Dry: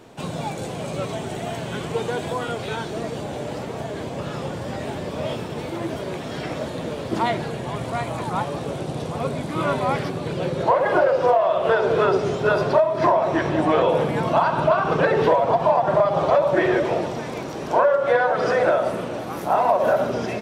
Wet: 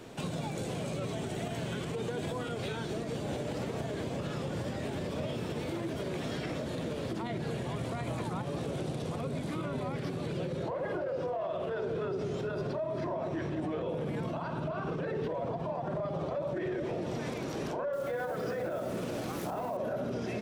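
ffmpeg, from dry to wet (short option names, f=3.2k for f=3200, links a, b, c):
-filter_complex "[0:a]asettb=1/sr,asplit=3[a][b][c];[a]atrim=end=17.934[d];[b]atrim=start=17.93:end=19.77,asetpts=PTS-STARTPTS,afade=t=in:d=0.004:c=qsin,afade=t=out:st=1.836:d=0.004:c=qsin,acrusher=bits=5:mix=0:aa=0.5[e];[c]atrim=start=19.766[f];[d][e]acrossfade=d=0.004:c1=hsin:c2=qsin[g];[g][f]acrossfade=d=0.004:c1=qsin:c2=hsin,acrossover=split=410[h][i];[i]acompressor=threshold=-32dB:ratio=2.5[j];[h][j]amix=inputs=2:normalize=0,equalizer=f=880:w=1.3:g=-4.5,alimiter=level_in=3dB:limit=-24dB:level=0:latency=1:release=103,volume=-3dB"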